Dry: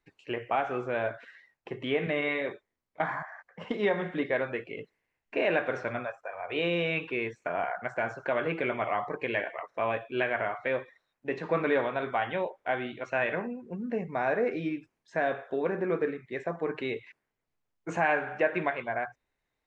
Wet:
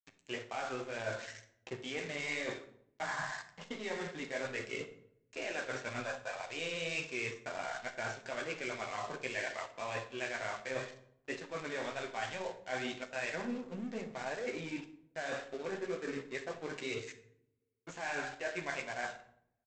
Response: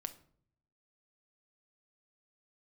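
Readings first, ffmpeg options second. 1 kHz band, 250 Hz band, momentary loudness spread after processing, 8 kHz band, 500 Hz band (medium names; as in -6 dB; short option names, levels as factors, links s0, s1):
-9.5 dB, -9.5 dB, 7 LU, no reading, -10.5 dB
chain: -filter_complex "[0:a]bandreject=f=68.47:t=h:w=4,bandreject=f=136.94:t=h:w=4,bandreject=f=205.41:t=h:w=4,bandreject=f=273.88:t=h:w=4,bandreject=f=342.35:t=h:w=4,bandreject=f=410.82:t=h:w=4,bandreject=f=479.29:t=h:w=4,bandreject=f=547.76:t=h:w=4,bandreject=f=616.23:t=h:w=4,bandreject=f=684.7:t=h:w=4,bandreject=f=753.17:t=h:w=4,bandreject=f=821.64:t=h:w=4,bandreject=f=890.11:t=h:w=4,bandreject=f=958.58:t=h:w=4,bandreject=f=1027.05:t=h:w=4,bandreject=f=1095.52:t=h:w=4,bandreject=f=1163.99:t=h:w=4,bandreject=f=1232.46:t=h:w=4,bandreject=f=1300.93:t=h:w=4,bandreject=f=1369.4:t=h:w=4,bandreject=f=1437.87:t=h:w=4,areverse,acompressor=threshold=0.0112:ratio=12,areverse,flanger=delay=8.1:depth=8:regen=-21:speed=2:shape=triangular,aresample=16000,aeval=exprs='sgn(val(0))*max(abs(val(0))-0.00126,0)':c=same,aresample=44100,crystalizer=i=4:c=0[s0];[1:a]atrim=start_sample=2205,asetrate=32634,aresample=44100[s1];[s0][s1]afir=irnorm=-1:irlink=0,volume=2.37"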